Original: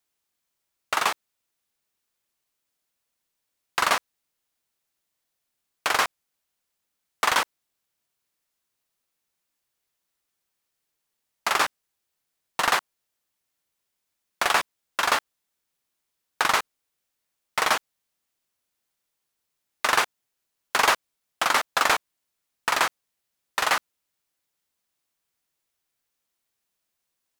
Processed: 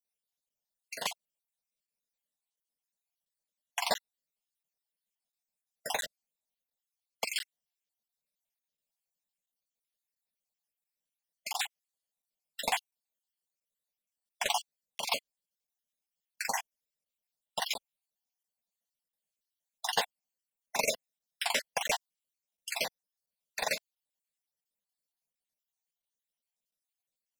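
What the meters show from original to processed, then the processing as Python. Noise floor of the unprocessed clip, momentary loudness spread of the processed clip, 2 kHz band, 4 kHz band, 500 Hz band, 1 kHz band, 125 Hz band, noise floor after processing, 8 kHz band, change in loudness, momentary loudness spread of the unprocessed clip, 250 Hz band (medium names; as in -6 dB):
-81 dBFS, 12 LU, -12.5 dB, -7.0 dB, -7.0 dB, -13.0 dB, -9.5 dB, under -85 dBFS, -6.5 dB, -10.0 dB, 9 LU, -11.0 dB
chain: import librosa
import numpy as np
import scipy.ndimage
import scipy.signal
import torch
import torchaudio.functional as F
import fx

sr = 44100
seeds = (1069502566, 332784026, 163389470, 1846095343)

y = fx.spec_dropout(x, sr, seeds[0], share_pct=54)
y = fx.fixed_phaser(y, sr, hz=340.0, stages=6)
y = fx.buffer_crackle(y, sr, first_s=0.49, period_s=0.69, block=512, kind='zero')
y = fx.upward_expand(y, sr, threshold_db=-38.0, expansion=1.5)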